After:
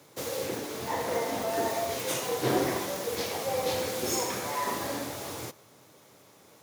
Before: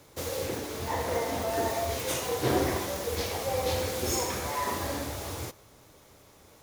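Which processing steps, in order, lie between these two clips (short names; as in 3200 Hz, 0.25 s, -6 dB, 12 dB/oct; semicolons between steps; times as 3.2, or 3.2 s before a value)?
HPF 120 Hz 24 dB/oct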